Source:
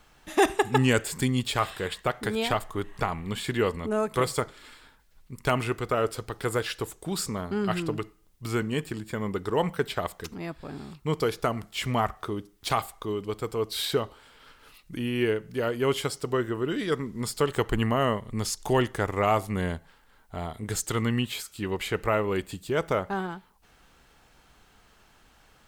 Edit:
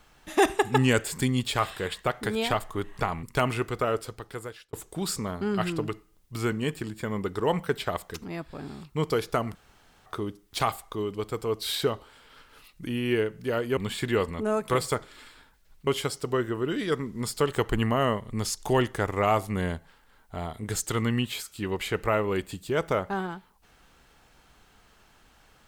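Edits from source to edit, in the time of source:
0:03.23–0:05.33: move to 0:15.87
0:05.88–0:06.83: fade out
0:11.65–0:12.16: fill with room tone

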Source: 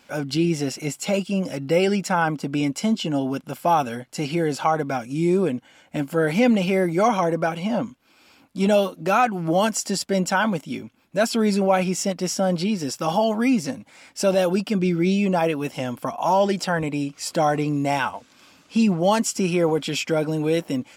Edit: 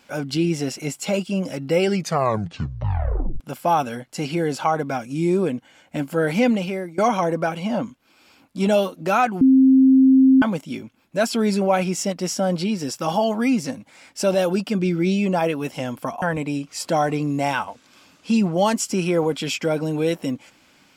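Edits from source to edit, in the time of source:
0:01.90: tape stop 1.50 s
0:06.43–0:06.98: fade out, to −19.5 dB
0:09.41–0:10.42: beep over 264 Hz −9.5 dBFS
0:16.22–0:16.68: remove

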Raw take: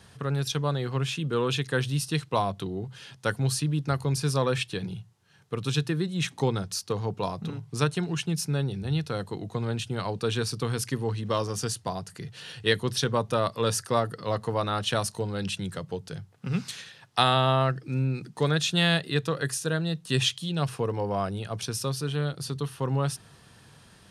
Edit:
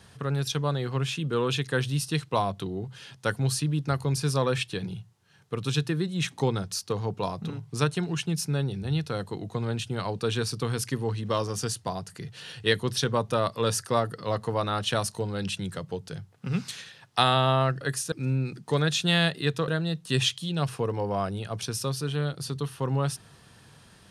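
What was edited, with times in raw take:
0:19.37–0:19.68: move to 0:17.81

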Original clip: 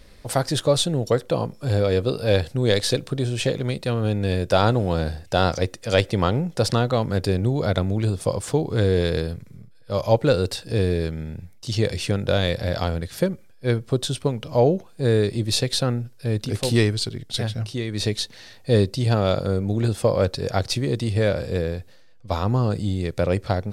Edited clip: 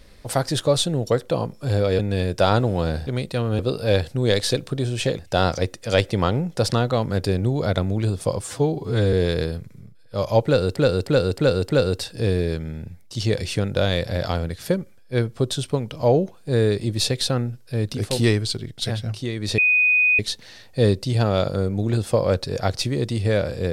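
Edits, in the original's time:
0:01.99–0:03.59: swap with 0:04.11–0:05.19
0:08.41–0:08.89: time-stretch 1.5×
0:10.21–0:10.52: repeat, 5 plays
0:18.10: insert tone 2,490 Hz −14 dBFS 0.61 s

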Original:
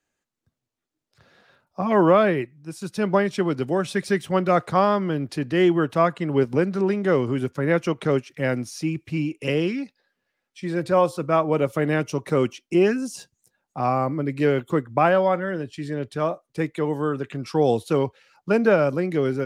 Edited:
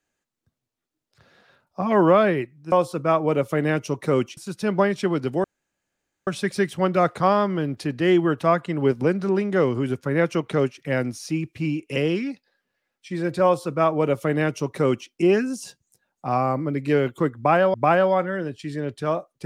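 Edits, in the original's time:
0:03.79: splice in room tone 0.83 s
0:10.96–0:12.61: duplicate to 0:02.72
0:14.88–0:15.26: repeat, 2 plays

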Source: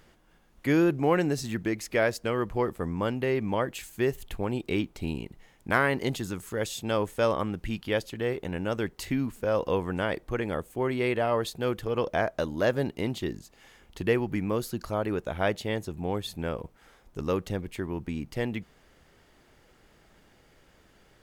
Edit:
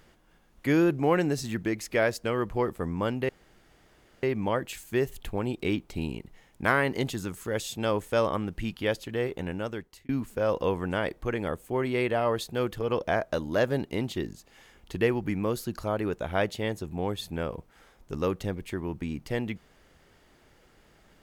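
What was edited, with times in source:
0:03.29: splice in room tone 0.94 s
0:08.49–0:09.15: fade out

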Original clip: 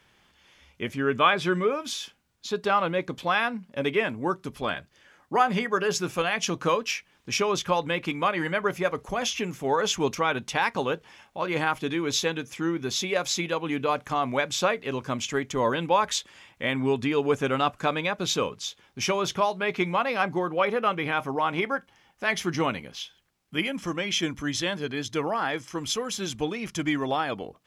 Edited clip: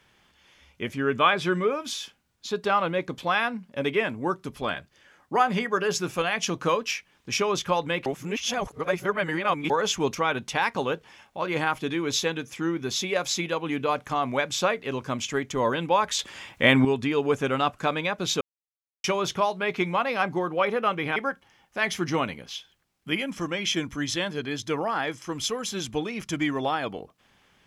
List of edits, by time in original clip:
0:08.06–0:09.70: reverse
0:16.19–0:16.85: clip gain +9 dB
0:18.41–0:19.04: silence
0:21.16–0:21.62: remove

